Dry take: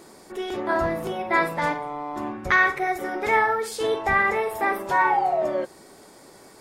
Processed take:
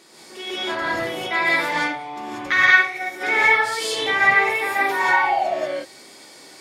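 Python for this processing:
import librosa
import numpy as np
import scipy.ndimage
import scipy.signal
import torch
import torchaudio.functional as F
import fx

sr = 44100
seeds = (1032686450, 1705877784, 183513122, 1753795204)

y = fx.weighting(x, sr, curve='D')
y = fx.rev_gated(y, sr, seeds[0], gate_ms=210, shape='rising', drr_db=-7.0)
y = fx.upward_expand(y, sr, threshold_db=-16.0, expansion=1.5, at=(2.65, 3.2), fade=0.02)
y = F.gain(torch.from_numpy(y), -7.0).numpy()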